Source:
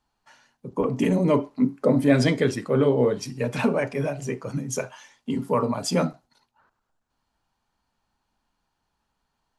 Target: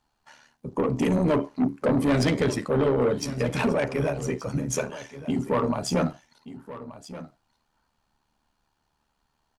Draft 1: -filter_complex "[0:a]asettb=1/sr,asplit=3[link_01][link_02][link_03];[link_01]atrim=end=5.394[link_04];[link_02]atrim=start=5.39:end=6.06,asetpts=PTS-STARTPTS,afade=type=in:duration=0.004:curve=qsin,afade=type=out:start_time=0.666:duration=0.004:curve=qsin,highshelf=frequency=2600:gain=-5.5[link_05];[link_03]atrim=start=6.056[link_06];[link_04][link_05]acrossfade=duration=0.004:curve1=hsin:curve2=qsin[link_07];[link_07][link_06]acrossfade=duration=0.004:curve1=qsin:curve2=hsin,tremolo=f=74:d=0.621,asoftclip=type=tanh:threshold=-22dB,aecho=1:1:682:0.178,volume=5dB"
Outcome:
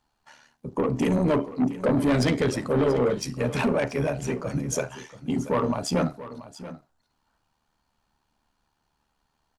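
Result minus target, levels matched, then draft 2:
echo 497 ms early
-filter_complex "[0:a]asettb=1/sr,asplit=3[link_01][link_02][link_03];[link_01]atrim=end=5.394[link_04];[link_02]atrim=start=5.39:end=6.06,asetpts=PTS-STARTPTS,afade=type=in:duration=0.004:curve=qsin,afade=type=out:start_time=0.666:duration=0.004:curve=qsin,highshelf=frequency=2600:gain=-5.5[link_05];[link_03]atrim=start=6.056[link_06];[link_04][link_05]acrossfade=duration=0.004:curve1=hsin:curve2=qsin[link_07];[link_07][link_06]acrossfade=duration=0.004:curve1=qsin:curve2=hsin,tremolo=f=74:d=0.621,asoftclip=type=tanh:threshold=-22dB,aecho=1:1:1179:0.178,volume=5dB"

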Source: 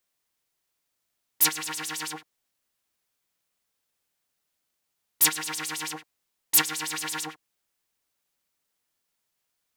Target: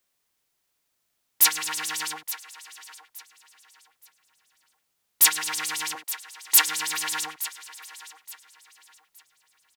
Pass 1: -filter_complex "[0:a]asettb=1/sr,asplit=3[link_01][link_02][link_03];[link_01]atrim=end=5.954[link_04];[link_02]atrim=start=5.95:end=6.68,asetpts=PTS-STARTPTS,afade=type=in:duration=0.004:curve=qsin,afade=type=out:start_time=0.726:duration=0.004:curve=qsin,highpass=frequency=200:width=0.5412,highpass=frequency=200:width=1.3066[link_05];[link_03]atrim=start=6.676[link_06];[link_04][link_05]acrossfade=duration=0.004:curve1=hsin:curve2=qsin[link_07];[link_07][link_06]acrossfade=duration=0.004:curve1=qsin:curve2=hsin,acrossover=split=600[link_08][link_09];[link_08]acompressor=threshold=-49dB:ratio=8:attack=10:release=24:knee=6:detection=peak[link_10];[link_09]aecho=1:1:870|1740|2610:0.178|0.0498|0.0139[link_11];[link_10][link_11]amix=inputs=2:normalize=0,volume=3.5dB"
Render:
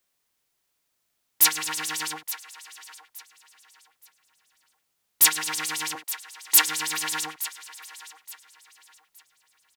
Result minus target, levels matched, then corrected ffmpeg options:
downward compressor: peak gain reduction −6.5 dB
-filter_complex "[0:a]asettb=1/sr,asplit=3[link_01][link_02][link_03];[link_01]atrim=end=5.954[link_04];[link_02]atrim=start=5.95:end=6.68,asetpts=PTS-STARTPTS,afade=type=in:duration=0.004:curve=qsin,afade=type=out:start_time=0.726:duration=0.004:curve=qsin,highpass=frequency=200:width=0.5412,highpass=frequency=200:width=1.3066[link_05];[link_03]atrim=start=6.676[link_06];[link_04][link_05]acrossfade=duration=0.004:curve1=hsin:curve2=qsin[link_07];[link_07][link_06]acrossfade=duration=0.004:curve1=qsin:curve2=hsin,acrossover=split=600[link_08][link_09];[link_08]acompressor=threshold=-56.5dB:ratio=8:attack=10:release=24:knee=6:detection=peak[link_10];[link_09]aecho=1:1:870|1740|2610:0.178|0.0498|0.0139[link_11];[link_10][link_11]amix=inputs=2:normalize=0,volume=3.5dB"

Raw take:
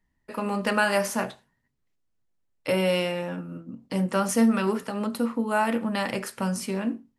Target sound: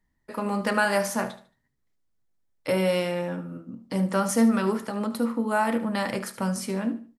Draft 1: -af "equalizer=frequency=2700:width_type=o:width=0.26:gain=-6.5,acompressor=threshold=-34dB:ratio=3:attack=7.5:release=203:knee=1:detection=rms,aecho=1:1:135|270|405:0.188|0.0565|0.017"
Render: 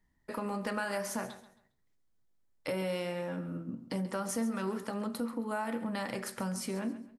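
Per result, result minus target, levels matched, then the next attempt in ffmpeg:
echo 61 ms late; downward compressor: peak gain reduction +13.5 dB
-af "equalizer=frequency=2700:width_type=o:width=0.26:gain=-6.5,acompressor=threshold=-34dB:ratio=3:attack=7.5:release=203:knee=1:detection=rms,aecho=1:1:74|148|222:0.188|0.0565|0.017"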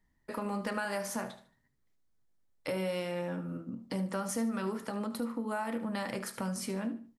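downward compressor: peak gain reduction +13.5 dB
-af "equalizer=frequency=2700:width_type=o:width=0.26:gain=-6.5,aecho=1:1:74|148|222:0.188|0.0565|0.017"

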